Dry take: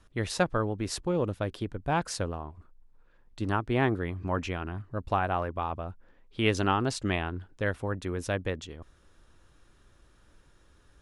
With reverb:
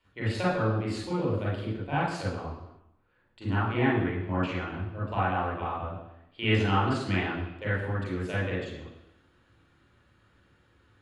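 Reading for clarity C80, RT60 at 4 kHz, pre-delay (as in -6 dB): 5.5 dB, 0.90 s, 35 ms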